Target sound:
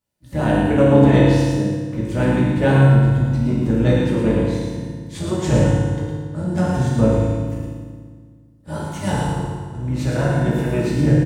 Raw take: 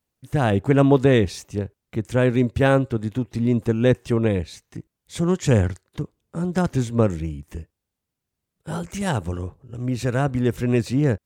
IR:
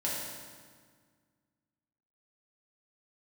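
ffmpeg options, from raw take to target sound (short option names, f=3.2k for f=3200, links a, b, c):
-filter_complex "[0:a]asplit=3[a][b][c];[b]asetrate=22050,aresample=44100,atempo=2,volume=-5dB[d];[c]asetrate=52444,aresample=44100,atempo=0.840896,volume=-15dB[e];[a][d][e]amix=inputs=3:normalize=0,aecho=1:1:111:0.562[f];[1:a]atrim=start_sample=2205[g];[f][g]afir=irnorm=-1:irlink=0,volume=-5dB"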